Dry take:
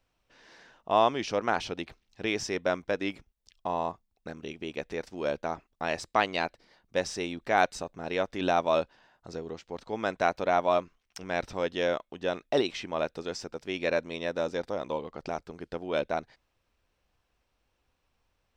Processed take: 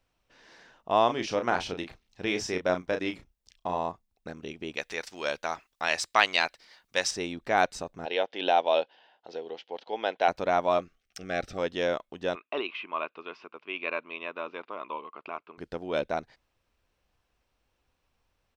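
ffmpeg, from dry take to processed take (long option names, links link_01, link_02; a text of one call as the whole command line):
ffmpeg -i in.wav -filter_complex "[0:a]asplit=3[link_01][link_02][link_03];[link_01]afade=type=out:start_time=1.08:duration=0.02[link_04];[link_02]asplit=2[link_05][link_06];[link_06]adelay=33,volume=-7dB[link_07];[link_05][link_07]amix=inputs=2:normalize=0,afade=type=in:start_time=1.08:duration=0.02,afade=type=out:start_time=3.77:duration=0.02[link_08];[link_03]afade=type=in:start_time=3.77:duration=0.02[link_09];[link_04][link_08][link_09]amix=inputs=3:normalize=0,asettb=1/sr,asplit=3[link_10][link_11][link_12];[link_10]atrim=end=4.764[link_13];[link_11]atrim=start=4.76:end=7.11,asetpts=PTS-STARTPTS,afade=type=in:duration=0.004:curve=qsin,afade=type=out:start_time=2.346:duration=0.004:curve=qsin,tiltshelf=frequency=740:gain=-9.5[link_14];[link_12]atrim=start=7.106[link_15];[link_13][link_14]acrossfade=duration=0.004:curve1=hsin:curve2=qsin[link_16];[link_16][link_15]acrossfade=duration=0.004:curve1=qsin:curve2=hsin,asettb=1/sr,asplit=3[link_17][link_18][link_19];[link_17]atrim=end=8.054[link_20];[link_18]atrim=start=8.05:end=10.28,asetpts=PTS-STARTPTS,afade=type=in:duration=0.004:curve=qsin,afade=type=out:start_time=2.226:duration=0.004:curve=qsin,highpass=400,equalizer=frequency=480:width_type=q:width=4:gain=4,equalizer=frequency=800:width_type=q:width=4:gain=6,equalizer=frequency=1200:width_type=q:width=4:gain=-9,equalizer=frequency=3100:width_type=q:width=4:gain=10,lowpass=frequency=4900:width=0.5412,lowpass=frequency=4900:width=1.3066[link_21];[link_19]atrim=start=10.276[link_22];[link_20][link_21]acrossfade=duration=0.004:curve1=hsin:curve2=qsin[link_23];[link_23][link_22]acrossfade=duration=0.004:curve1=qsin:curve2=hsin,asettb=1/sr,asplit=3[link_24][link_25][link_26];[link_24]atrim=end=10.794[link_27];[link_25]atrim=start=10.79:end=11.58,asetpts=PTS-STARTPTS,afade=type=in:duration=0.004:curve=qsin,afade=type=out:start_time=0.786:duration=0.004:curve=qsin,asuperstop=centerf=950:order=12:qfactor=3.2[link_28];[link_26]atrim=start=11.576[link_29];[link_27][link_28]acrossfade=duration=0.004:curve1=hsin:curve2=qsin[link_30];[link_30][link_29]acrossfade=duration=0.004:curve1=qsin:curve2=hsin,asettb=1/sr,asplit=3[link_31][link_32][link_33];[link_31]atrim=end=12.354[link_34];[link_32]atrim=start=12.35:end=15.58,asetpts=PTS-STARTPTS,afade=type=in:duration=0.004:curve=qsin,afade=type=out:start_time=3.226:duration=0.004:curve=qsin,highpass=450,equalizer=frequency=520:width_type=q:width=4:gain=-10,equalizer=frequency=780:width_type=q:width=4:gain=-8,equalizer=frequency=1100:width_type=q:width=4:gain=10,equalizer=frequency=1800:width_type=q:width=4:gain=-8,equalizer=frequency=2600:width_type=q:width=4:gain=8,lowpass=frequency=2900:width=0.5412,lowpass=frequency=2900:width=1.3066[link_35];[link_33]atrim=start=15.576[link_36];[link_34][link_35]acrossfade=duration=0.004:curve1=hsin:curve2=qsin[link_37];[link_37][link_36]acrossfade=duration=0.004:curve1=qsin:curve2=hsin" out.wav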